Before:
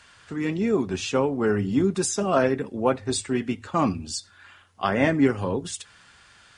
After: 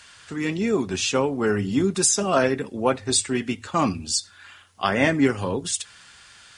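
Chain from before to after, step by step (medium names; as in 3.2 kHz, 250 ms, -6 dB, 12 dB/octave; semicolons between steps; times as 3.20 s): treble shelf 2.3 kHz +9 dB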